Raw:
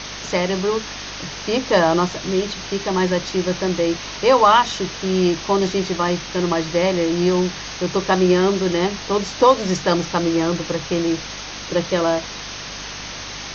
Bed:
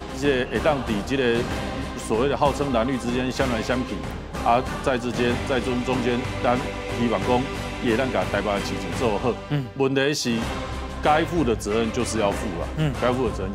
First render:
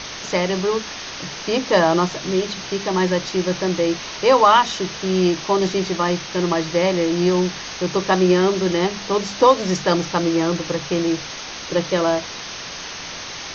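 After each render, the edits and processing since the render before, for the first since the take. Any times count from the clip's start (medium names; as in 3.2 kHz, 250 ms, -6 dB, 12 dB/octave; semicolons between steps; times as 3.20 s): de-hum 50 Hz, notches 6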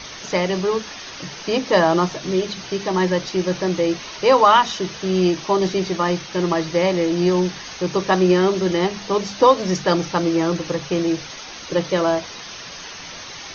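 noise reduction 7 dB, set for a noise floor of -33 dBFS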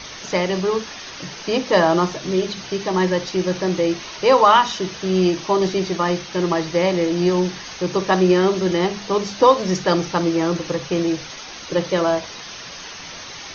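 flutter echo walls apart 10.1 m, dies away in 0.22 s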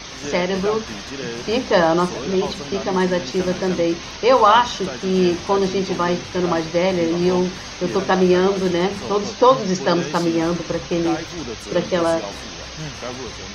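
add bed -9 dB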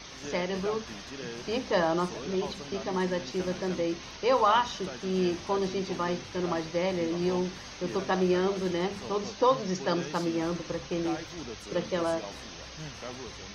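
trim -10.5 dB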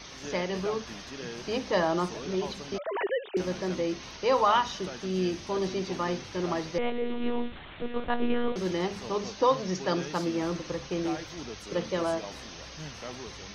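2.78–3.37 s: formants replaced by sine waves; 5.06–5.56 s: peaking EQ 890 Hz -5 dB 1.7 oct; 6.78–8.56 s: monotone LPC vocoder at 8 kHz 240 Hz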